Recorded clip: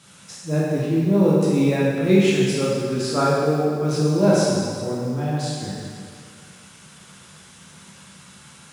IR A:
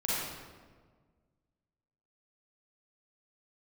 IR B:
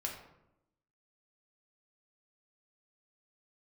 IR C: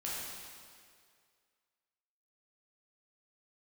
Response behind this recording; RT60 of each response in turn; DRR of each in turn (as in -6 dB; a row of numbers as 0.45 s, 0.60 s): C; 1.6 s, 0.85 s, 2.1 s; -8.5 dB, -0.5 dB, -7.0 dB